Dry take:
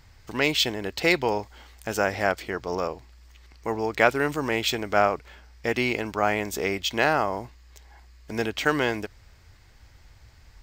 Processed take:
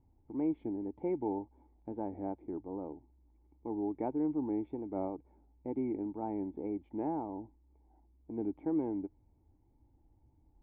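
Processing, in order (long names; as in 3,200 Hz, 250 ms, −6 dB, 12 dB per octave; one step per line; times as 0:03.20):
tape wow and flutter 130 cents
formant resonators in series u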